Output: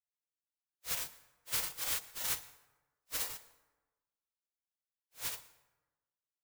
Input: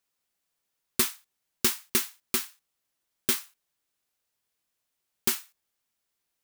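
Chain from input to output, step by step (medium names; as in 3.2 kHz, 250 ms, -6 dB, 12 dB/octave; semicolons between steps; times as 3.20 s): phase randomisation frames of 200 ms; Doppler pass-by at 2.47 s, 12 m/s, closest 8.5 m; compression, threshold -33 dBFS, peak gain reduction 8 dB; spectral gate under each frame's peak -15 dB weak; plate-style reverb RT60 1.2 s, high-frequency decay 0.55×, pre-delay 90 ms, DRR 18 dB; trim +7.5 dB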